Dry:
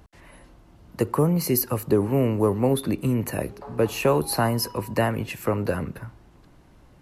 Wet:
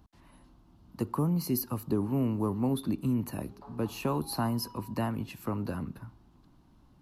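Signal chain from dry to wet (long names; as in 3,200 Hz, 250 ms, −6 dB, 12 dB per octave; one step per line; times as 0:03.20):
graphic EQ with 10 bands 250 Hz +6 dB, 500 Hz −9 dB, 1,000 Hz +4 dB, 2,000 Hz −9 dB, 4,000 Hz +3 dB, 8,000 Hz −5 dB
level −8 dB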